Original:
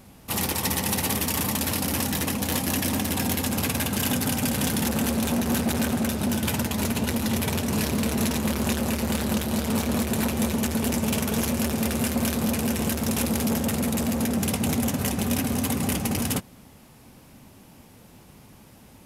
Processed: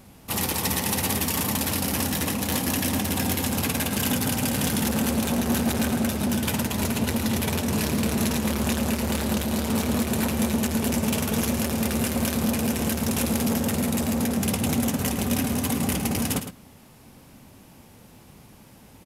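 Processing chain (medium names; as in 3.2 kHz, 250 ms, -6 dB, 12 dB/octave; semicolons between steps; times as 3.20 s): delay 109 ms -10 dB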